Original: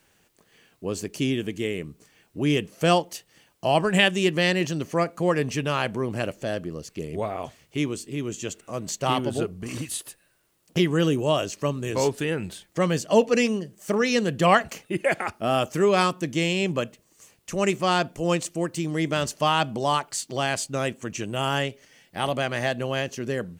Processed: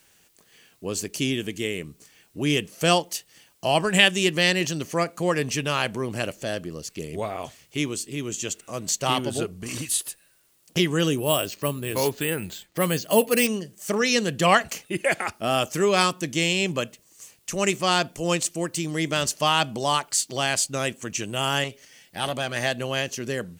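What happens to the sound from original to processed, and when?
11.18–13.47 careless resampling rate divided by 4×, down filtered, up hold
21.64–22.56 core saturation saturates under 780 Hz
whole clip: high shelf 2500 Hz +9.5 dB; gain -1.5 dB

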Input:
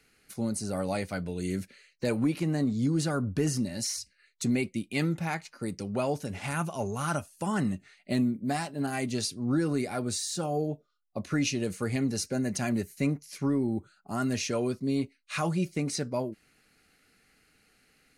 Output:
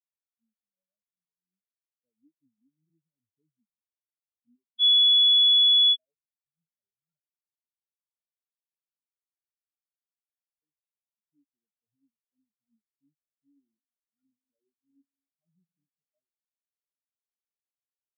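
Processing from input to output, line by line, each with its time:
2.41–2.9 reverse
4.79–5.96 bleep 3400 Hz -11.5 dBFS
7.29–10.62 spectral compressor 10:1
13.48–15.74 reverb throw, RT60 2.6 s, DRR 6 dB
whole clip: spectral expander 4:1; gain -3.5 dB

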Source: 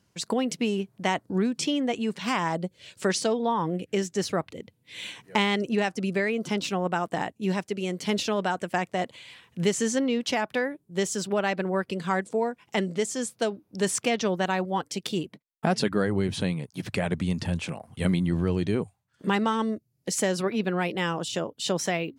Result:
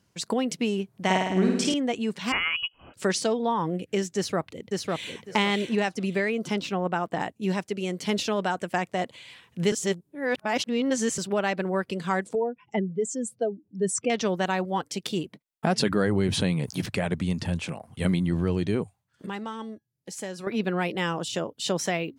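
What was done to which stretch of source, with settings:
0.9–1.74 flutter echo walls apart 9.2 m, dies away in 1 s
2.32–2.94 inverted band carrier 3100 Hz
4.16–5.23 echo throw 0.55 s, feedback 20%, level -2 dB
6.61–7.2 bell 10000 Hz -9 dB 1.7 oct
9.72–11.18 reverse
12.35–14.1 spectral contrast raised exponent 2
15.78–16.86 fast leveller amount 50%
19.26–20.47 resonator 830 Hz, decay 0.23 s, mix 70%

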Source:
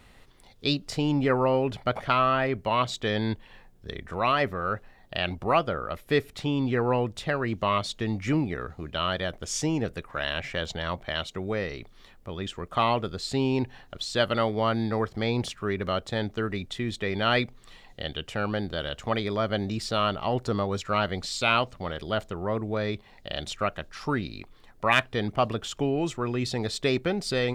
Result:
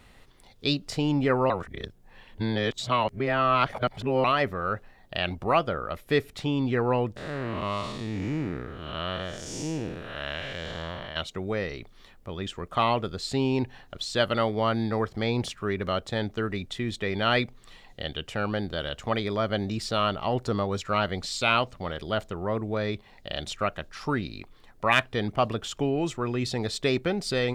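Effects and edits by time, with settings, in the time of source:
1.5–4.24 reverse
7.16–11.16 time blur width 0.273 s

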